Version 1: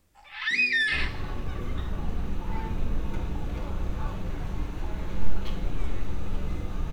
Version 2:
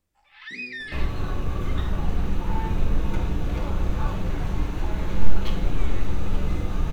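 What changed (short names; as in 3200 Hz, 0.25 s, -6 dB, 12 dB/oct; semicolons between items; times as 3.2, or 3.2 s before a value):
first sound -11.0 dB; second sound +6.0 dB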